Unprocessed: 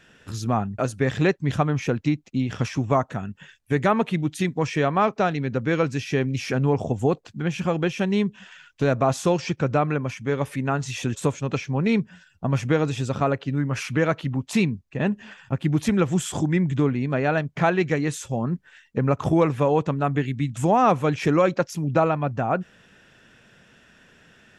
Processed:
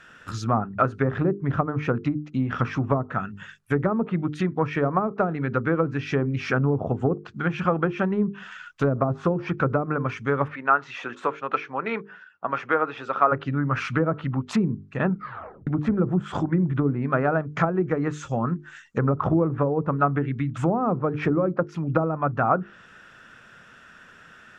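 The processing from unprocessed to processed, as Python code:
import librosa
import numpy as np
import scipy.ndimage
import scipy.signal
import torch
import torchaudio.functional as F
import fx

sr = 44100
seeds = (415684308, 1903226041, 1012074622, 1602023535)

y = fx.bandpass_edges(x, sr, low_hz=450.0, high_hz=2400.0, at=(10.47, 13.31), fade=0.02)
y = fx.peak_eq(y, sr, hz=6800.0, db=9.5, octaves=0.59, at=(17.16, 19.08))
y = fx.edit(y, sr, fx.tape_stop(start_s=15.05, length_s=0.62), tone=tone)
y = fx.env_lowpass_down(y, sr, base_hz=410.0, full_db=-16.0)
y = fx.peak_eq(y, sr, hz=1300.0, db=13.0, octaves=0.66)
y = fx.hum_notches(y, sr, base_hz=50, count=9)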